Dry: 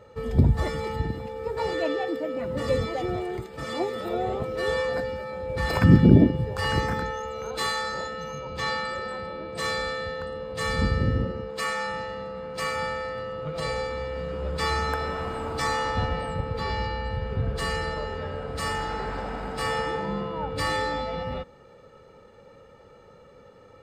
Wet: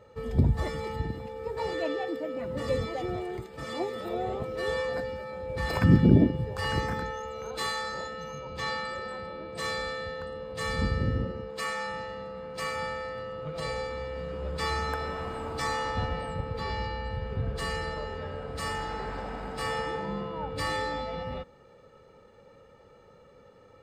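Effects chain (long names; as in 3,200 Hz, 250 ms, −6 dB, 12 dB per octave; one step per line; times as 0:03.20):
notch filter 1,400 Hz, Q 28
level −4 dB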